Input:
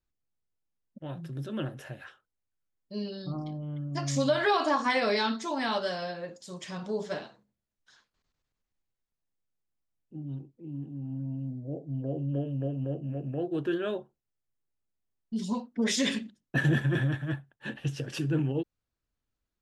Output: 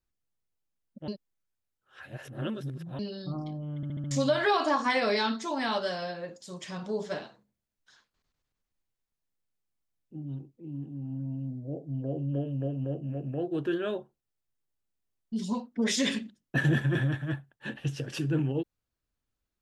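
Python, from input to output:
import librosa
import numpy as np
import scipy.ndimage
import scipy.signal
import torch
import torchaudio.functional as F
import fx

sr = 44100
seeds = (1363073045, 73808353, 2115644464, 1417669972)

y = fx.edit(x, sr, fx.reverse_span(start_s=1.08, length_s=1.91),
    fx.stutter_over(start_s=3.76, slice_s=0.07, count=5), tone=tone)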